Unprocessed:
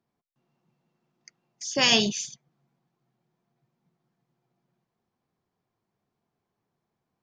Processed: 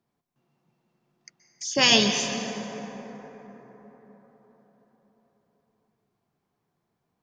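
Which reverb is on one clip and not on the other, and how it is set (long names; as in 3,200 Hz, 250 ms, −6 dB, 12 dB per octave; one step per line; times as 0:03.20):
dense smooth reverb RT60 4.8 s, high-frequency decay 0.35×, pre-delay 115 ms, DRR 5.5 dB
level +2 dB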